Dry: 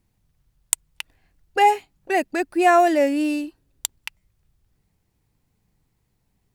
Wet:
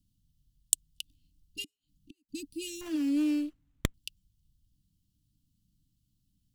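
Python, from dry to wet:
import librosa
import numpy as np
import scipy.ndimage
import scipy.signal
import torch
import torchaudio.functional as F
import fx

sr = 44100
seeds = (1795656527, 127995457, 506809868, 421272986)

y = fx.gate_flip(x, sr, shuts_db=-19.0, range_db=-40, at=(1.64, 2.29))
y = scipy.signal.sosfilt(scipy.signal.cheby1(5, 1.0, [300.0, 2900.0], 'bandstop', fs=sr, output='sos'), y)
y = fx.running_max(y, sr, window=9, at=(2.81, 3.94))
y = y * librosa.db_to_amplitude(-4.0)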